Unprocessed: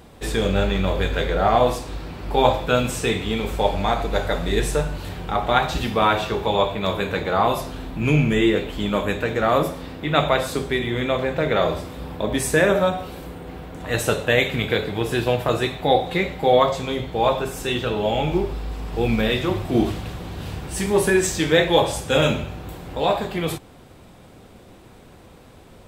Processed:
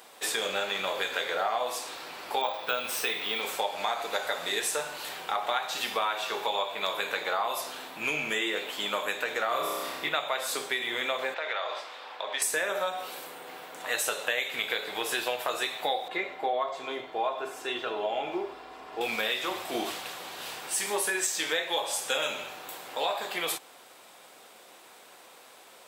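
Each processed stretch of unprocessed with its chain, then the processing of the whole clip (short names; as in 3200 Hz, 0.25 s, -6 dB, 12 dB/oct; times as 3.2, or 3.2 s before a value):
2.41–3.42 bell 7300 Hz -13 dB 0.28 oct + careless resampling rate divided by 2×, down filtered, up hold
9.48–10.09 bell 130 Hz +7.5 dB 1.2 oct + notch 830 Hz, Q 13 + flutter echo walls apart 5.4 m, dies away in 0.76 s
11.34–12.42 HPF 250 Hz + three-band isolator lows -13 dB, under 530 Hz, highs -23 dB, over 5400 Hz + compressor 4:1, threshold -26 dBFS
16.08–19.01 LPF 1100 Hz 6 dB/oct + comb 2.9 ms, depth 40%
whole clip: HPF 710 Hz 12 dB/oct; high shelf 4500 Hz +6 dB; compressor 6:1, threshold -26 dBFS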